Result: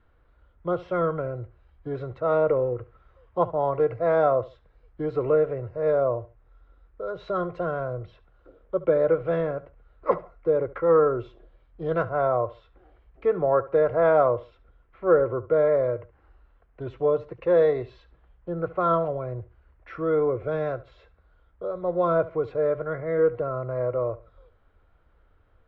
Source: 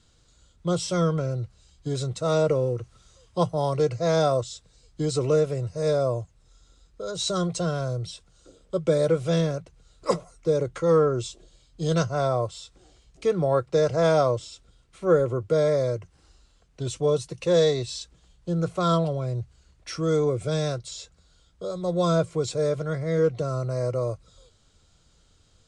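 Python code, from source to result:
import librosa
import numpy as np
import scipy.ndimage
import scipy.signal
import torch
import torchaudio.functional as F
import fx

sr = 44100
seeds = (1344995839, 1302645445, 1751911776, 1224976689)

y = scipy.signal.sosfilt(scipy.signal.butter(4, 1900.0, 'lowpass', fs=sr, output='sos'), x)
y = fx.peak_eq(y, sr, hz=160.0, db=-12.0, octaves=1.5)
y = fx.echo_feedback(y, sr, ms=71, feedback_pct=26, wet_db=-18)
y = y * librosa.db_to_amplitude(3.0)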